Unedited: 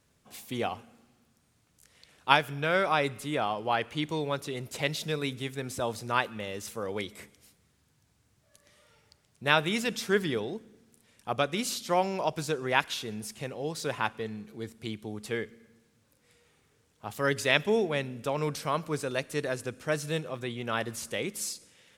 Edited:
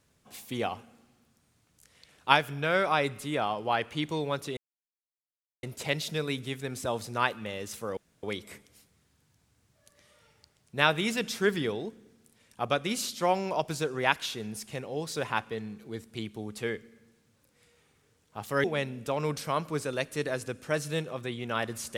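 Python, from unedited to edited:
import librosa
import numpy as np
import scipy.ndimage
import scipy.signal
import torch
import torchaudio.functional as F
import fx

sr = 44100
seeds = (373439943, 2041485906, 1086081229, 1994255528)

y = fx.edit(x, sr, fx.insert_silence(at_s=4.57, length_s=1.06),
    fx.insert_room_tone(at_s=6.91, length_s=0.26),
    fx.cut(start_s=17.32, length_s=0.5), tone=tone)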